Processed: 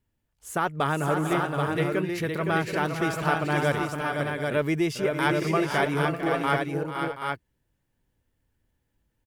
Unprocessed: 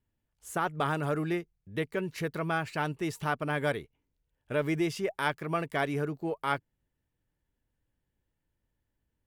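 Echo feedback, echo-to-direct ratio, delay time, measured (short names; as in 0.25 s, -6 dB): no steady repeat, -1.0 dB, 0.447 s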